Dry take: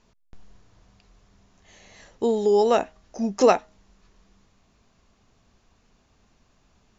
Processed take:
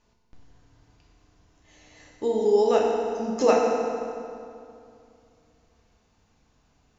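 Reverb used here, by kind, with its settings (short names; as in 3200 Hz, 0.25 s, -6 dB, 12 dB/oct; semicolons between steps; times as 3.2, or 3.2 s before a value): FDN reverb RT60 2.5 s, low-frequency decay 1.1×, high-frequency decay 0.7×, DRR -2 dB; gain -6 dB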